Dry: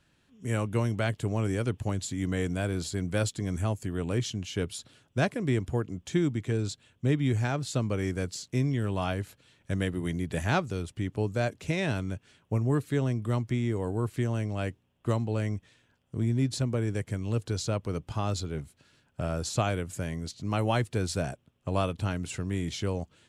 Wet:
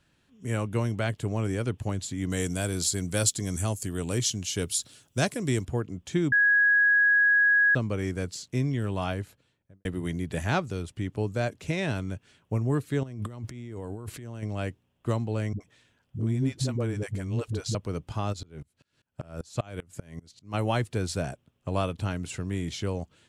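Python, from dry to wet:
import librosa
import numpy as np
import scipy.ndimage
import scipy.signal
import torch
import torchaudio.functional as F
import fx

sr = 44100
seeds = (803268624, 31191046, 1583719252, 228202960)

y = fx.bass_treble(x, sr, bass_db=0, treble_db=14, at=(2.3, 5.65))
y = fx.studio_fade_out(y, sr, start_s=9.09, length_s=0.76)
y = fx.over_compress(y, sr, threshold_db=-38.0, ratio=-1.0, at=(13.03, 14.43))
y = fx.dispersion(y, sr, late='highs', ms=75.0, hz=320.0, at=(15.53, 17.75))
y = fx.tremolo_decay(y, sr, direction='swelling', hz=5.1, depth_db=27, at=(18.32, 20.53), fade=0.02)
y = fx.edit(y, sr, fx.bleep(start_s=6.32, length_s=1.43, hz=1660.0, db=-17.5), tone=tone)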